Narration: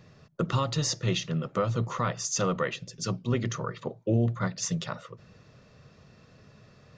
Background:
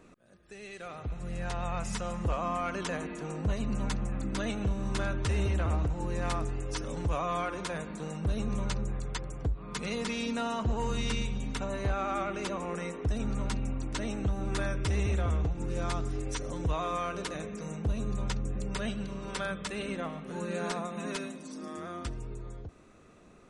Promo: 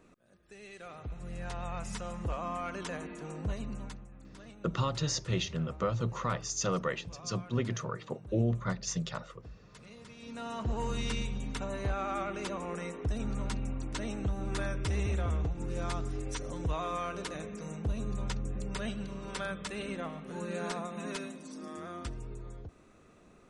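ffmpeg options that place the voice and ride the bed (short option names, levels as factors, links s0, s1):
-filter_complex "[0:a]adelay=4250,volume=0.631[s0];[1:a]volume=3.76,afade=t=out:st=3.5:d=0.56:silence=0.199526,afade=t=in:st=10.18:d=0.57:silence=0.158489[s1];[s0][s1]amix=inputs=2:normalize=0"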